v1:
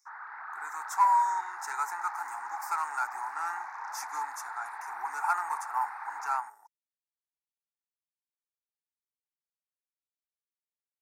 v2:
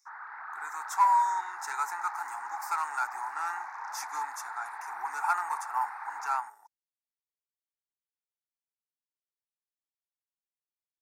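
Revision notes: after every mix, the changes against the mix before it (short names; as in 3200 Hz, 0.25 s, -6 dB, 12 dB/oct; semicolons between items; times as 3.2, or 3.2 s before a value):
speech: add bell 3300 Hz +5.5 dB 0.9 oct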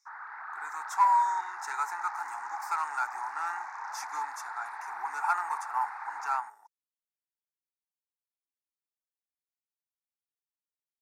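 speech: add high shelf 8400 Hz -8 dB; background: remove air absorption 60 m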